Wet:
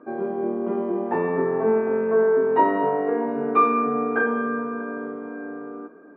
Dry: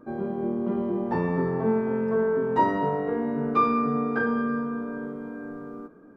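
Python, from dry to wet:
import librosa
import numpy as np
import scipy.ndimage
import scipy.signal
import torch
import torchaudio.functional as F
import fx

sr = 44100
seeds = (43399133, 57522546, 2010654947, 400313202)

p1 = fx.cabinet(x, sr, low_hz=230.0, low_slope=12, high_hz=3000.0, hz=(300.0, 420.0, 700.0, 1100.0, 1600.0, 2400.0), db=(4, 6, 7, 4, 4, 5))
y = p1 + fx.echo_single(p1, sr, ms=633, db=-21.0, dry=0)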